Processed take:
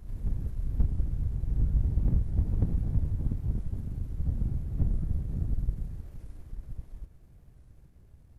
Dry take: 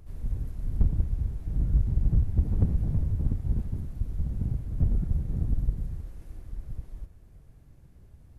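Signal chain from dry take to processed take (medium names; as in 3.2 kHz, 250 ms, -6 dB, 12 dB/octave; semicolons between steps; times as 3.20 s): partial rectifier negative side -3 dB; reverse echo 539 ms -5 dB; warped record 45 rpm, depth 160 cents; trim -2 dB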